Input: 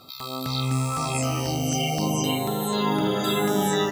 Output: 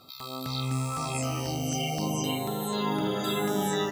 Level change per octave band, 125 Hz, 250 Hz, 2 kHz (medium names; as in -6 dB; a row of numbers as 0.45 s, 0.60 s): -5.0 dB, -5.0 dB, -5.0 dB